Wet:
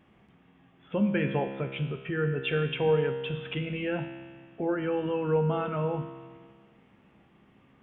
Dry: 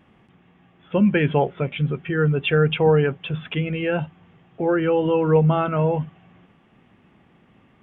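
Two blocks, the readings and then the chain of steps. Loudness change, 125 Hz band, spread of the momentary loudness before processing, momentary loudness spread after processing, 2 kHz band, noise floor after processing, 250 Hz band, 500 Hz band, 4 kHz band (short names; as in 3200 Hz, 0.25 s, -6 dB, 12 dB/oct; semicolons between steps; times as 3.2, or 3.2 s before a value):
-8.5 dB, -10.0 dB, 10 LU, 9 LU, -8.0 dB, -61 dBFS, -8.5 dB, -8.0 dB, n/a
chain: in parallel at +1.5 dB: compressor, threshold -27 dBFS, peak gain reduction 14 dB; on the sum: resonator 67 Hz, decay 1.7 s, harmonics all, mix 80%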